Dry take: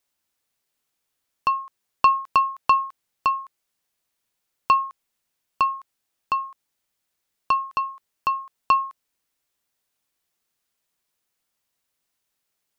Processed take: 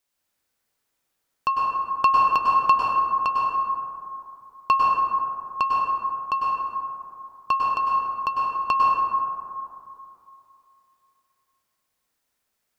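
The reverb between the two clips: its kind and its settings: plate-style reverb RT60 2.7 s, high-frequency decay 0.3×, pre-delay 90 ms, DRR -4 dB; gain -2 dB

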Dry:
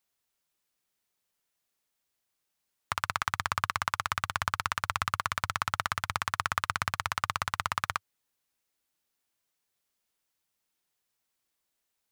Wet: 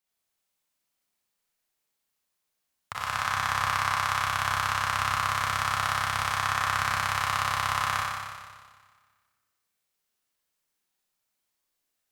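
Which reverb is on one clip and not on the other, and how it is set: Schroeder reverb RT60 1.6 s, combs from 30 ms, DRR -6 dB; gain -6 dB

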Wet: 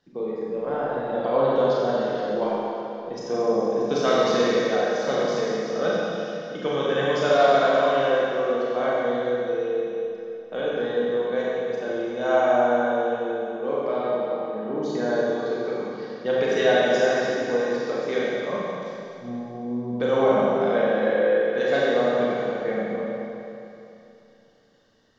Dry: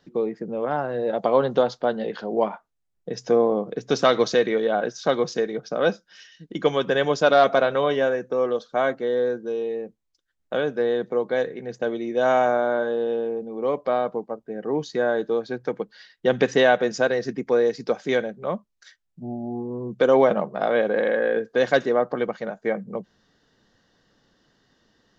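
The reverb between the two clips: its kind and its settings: Schroeder reverb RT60 2.9 s, combs from 29 ms, DRR -7 dB; gain -8 dB

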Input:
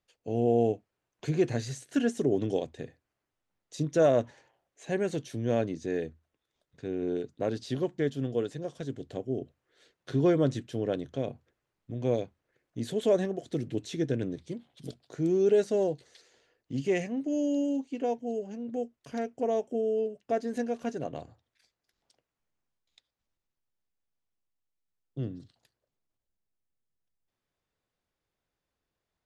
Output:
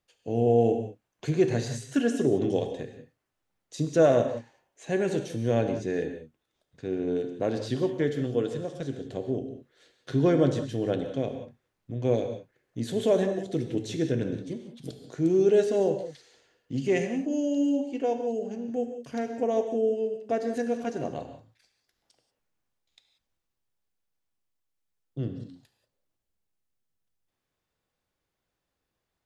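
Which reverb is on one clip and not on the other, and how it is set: non-linear reverb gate 0.21 s flat, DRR 6 dB; gain +2 dB

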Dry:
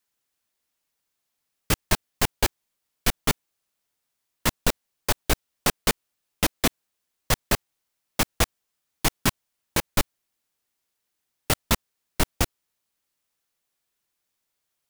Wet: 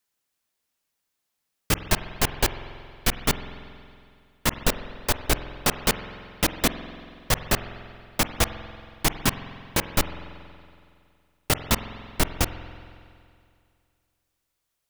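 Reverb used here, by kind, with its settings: spring tank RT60 2.3 s, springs 46 ms, chirp 80 ms, DRR 10 dB

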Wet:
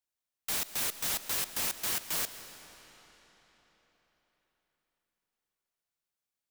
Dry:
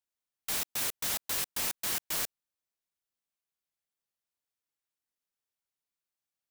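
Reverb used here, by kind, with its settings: digital reverb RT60 4.4 s, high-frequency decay 0.85×, pre-delay 90 ms, DRR 10.5 dB

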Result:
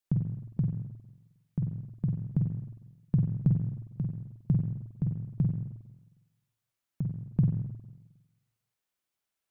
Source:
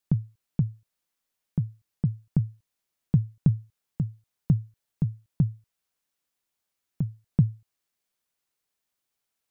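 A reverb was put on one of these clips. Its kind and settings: spring tank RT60 1.1 s, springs 45/51 ms, chirp 65 ms, DRR 1.5 dB; gain -5 dB

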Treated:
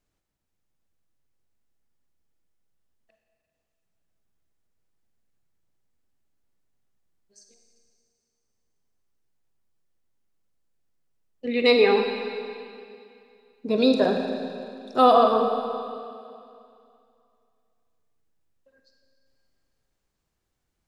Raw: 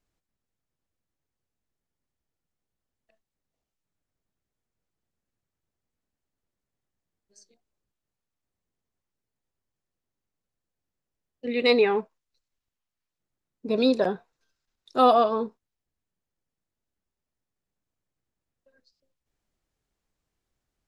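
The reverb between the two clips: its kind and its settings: Schroeder reverb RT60 2.5 s, DRR 3.5 dB; gain +1.5 dB

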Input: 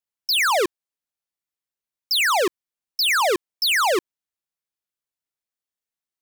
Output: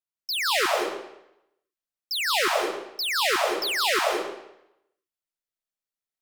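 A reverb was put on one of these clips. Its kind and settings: digital reverb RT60 0.84 s, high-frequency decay 0.9×, pre-delay 0.115 s, DRR -3 dB; gain -8 dB

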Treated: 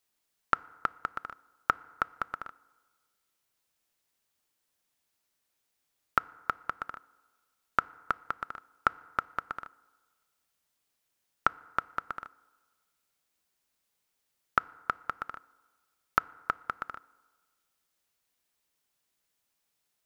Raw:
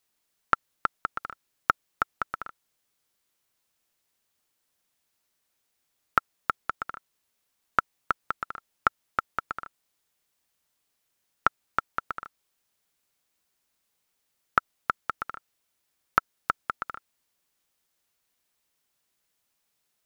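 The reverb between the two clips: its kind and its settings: FDN reverb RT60 1.5 s, low-frequency decay 0.75×, high-frequency decay 0.5×, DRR 20 dB; gain -3 dB

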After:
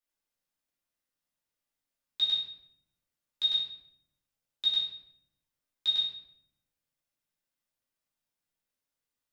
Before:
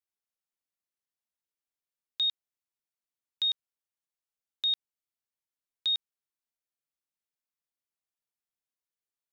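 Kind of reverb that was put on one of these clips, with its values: shoebox room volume 180 m³, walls mixed, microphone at 2.6 m; gain -3.5 dB

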